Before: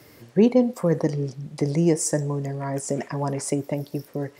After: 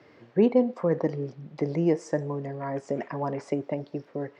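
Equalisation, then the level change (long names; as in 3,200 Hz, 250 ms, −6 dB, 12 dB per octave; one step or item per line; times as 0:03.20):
high-pass filter 310 Hz 6 dB per octave
low-pass filter 2,900 Hz 6 dB per octave
high-frequency loss of the air 170 metres
0.0 dB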